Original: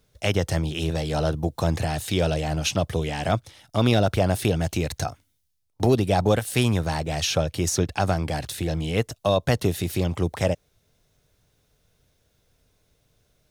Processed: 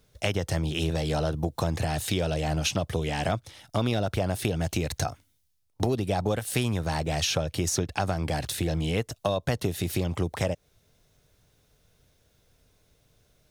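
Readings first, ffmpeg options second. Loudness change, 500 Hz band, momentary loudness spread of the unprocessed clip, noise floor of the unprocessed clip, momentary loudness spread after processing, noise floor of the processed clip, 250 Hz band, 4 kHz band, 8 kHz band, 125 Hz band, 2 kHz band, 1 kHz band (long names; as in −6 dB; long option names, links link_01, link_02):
−4.0 dB, −5.0 dB, 6 LU, −68 dBFS, 3 LU, −68 dBFS, −4.5 dB, −2.5 dB, −2.0 dB, −4.0 dB, −3.0 dB, −4.0 dB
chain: -af "acompressor=threshold=-25dB:ratio=4,volume=1.5dB"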